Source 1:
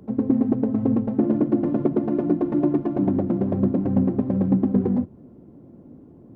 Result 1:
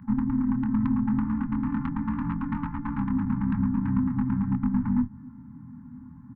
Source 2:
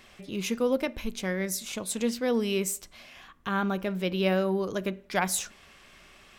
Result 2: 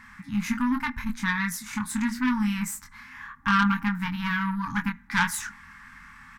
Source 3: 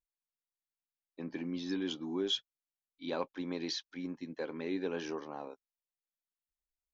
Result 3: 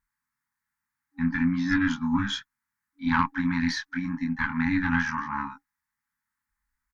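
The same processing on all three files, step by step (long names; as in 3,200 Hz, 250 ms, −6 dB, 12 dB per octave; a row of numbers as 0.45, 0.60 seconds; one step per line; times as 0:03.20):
downward compressor, threshold −23 dBFS
high shelf with overshoot 2,300 Hz −8.5 dB, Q 3
double-tracking delay 24 ms −4 dB
tube saturation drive 23 dB, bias 0.7
brick-wall band-stop 280–810 Hz
loudness normalisation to −27 LKFS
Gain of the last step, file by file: +6.5, +9.0, +18.0 decibels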